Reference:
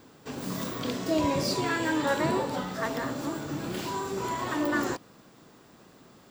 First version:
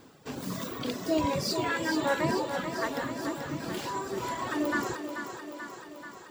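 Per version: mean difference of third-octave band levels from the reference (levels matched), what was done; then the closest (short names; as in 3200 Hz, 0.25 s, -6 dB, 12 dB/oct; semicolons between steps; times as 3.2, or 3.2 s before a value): 4.0 dB: reverb removal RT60 1.9 s; vibrato 5.4 Hz 8 cents; thinning echo 0.435 s, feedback 67%, high-pass 170 Hz, level -7.5 dB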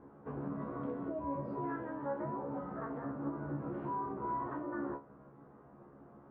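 12.0 dB: LPF 1300 Hz 24 dB/oct; compressor 10:1, threshold -35 dBFS, peak gain reduction 14 dB; resonator 70 Hz, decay 0.22 s, harmonics all, mix 100%; gain +5.5 dB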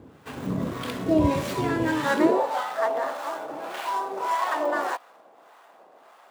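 7.5 dB: median filter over 9 samples; high-pass sweep 69 Hz -> 700 Hz, 1.91–2.41; harmonic tremolo 1.7 Hz, depth 70%, crossover 800 Hz; gain +6.5 dB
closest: first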